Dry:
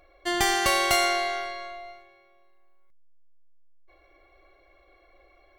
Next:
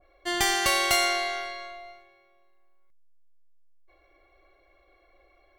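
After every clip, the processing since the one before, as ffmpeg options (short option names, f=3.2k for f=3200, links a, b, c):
-af "adynamicequalizer=threshold=0.0141:dfrequency=1600:dqfactor=0.7:tfrequency=1600:tqfactor=0.7:attack=5:release=100:ratio=0.375:range=2:mode=boostabove:tftype=highshelf,volume=-3dB"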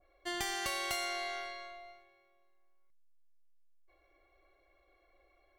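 -af "acompressor=threshold=-27dB:ratio=3,volume=-7.5dB"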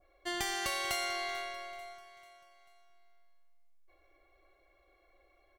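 -af "aecho=1:1:441|882|1323|1764:0.133|0.0613|0.0282|0.013,volume=1.5dB"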